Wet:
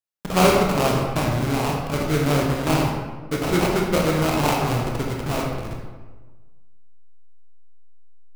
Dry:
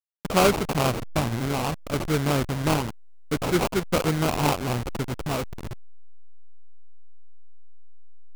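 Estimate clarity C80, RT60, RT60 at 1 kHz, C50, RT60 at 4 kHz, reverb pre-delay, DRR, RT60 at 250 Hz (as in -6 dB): 4.0 dB, 1.3 s, 1.3 s, 2.0 dB, 0.80 s, 18 ms, -1.5 dB, 1.5 s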